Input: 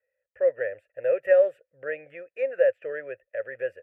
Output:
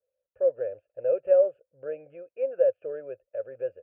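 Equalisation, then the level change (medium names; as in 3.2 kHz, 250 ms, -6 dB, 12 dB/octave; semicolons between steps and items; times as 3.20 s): boxcar filter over 23 samples; 0.0 dB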